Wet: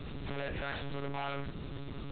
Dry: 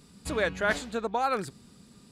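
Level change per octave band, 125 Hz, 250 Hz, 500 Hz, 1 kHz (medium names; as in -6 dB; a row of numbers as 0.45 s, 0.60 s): +2.5 dB, -5.5 dB, -10.5 dB, -11.0 dB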